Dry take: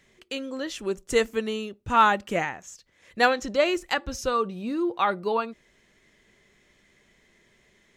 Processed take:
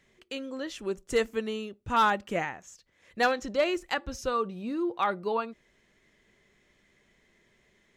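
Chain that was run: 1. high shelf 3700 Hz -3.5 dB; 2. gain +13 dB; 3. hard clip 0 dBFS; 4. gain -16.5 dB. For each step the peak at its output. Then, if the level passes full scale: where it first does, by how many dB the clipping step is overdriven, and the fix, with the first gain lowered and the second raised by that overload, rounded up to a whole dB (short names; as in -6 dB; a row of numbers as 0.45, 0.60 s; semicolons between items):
-7.5, +5.5, 0.0, -16.5 dBFS; step 2, 5.5 dB; step 2 +7 dB, step 4 -10.5 dB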